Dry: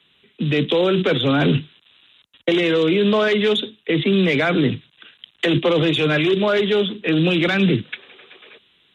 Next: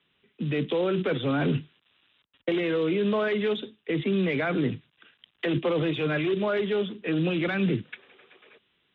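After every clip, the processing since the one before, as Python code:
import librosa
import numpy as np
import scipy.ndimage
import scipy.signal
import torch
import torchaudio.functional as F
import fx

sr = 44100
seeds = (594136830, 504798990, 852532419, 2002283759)

y = scipy.signal.sosfilt(scipy.signal.butter(2, 2500.0, 'lowpass', fs=sr, output='sos'), x)
y = y * 10.0 ** (-8.0 / 20.0)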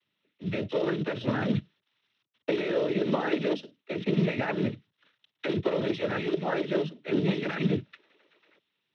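y = fx.noise_vocoder(x, sr, seeds[0], bands=12)
y = fx.upward_expand(y, sr, threshold_db=-39.0, expansion=1.5)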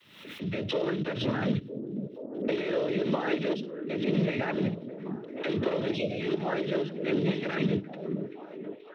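y = fx.spec_erase(x, sr, start_s=5.96, length_s=0.25, low_hz=740.0, high_hz=2100.0)
y = fx.echo_stepped(y, sr, ms=480, hz=210.0, octaves=0.7, feedback_pct=70, wet_db=-6.0)
y = fx.pre_swell(y, sr, db_per_s=70.0)
y = y * 10.0 ** (-2.0 / 20.0)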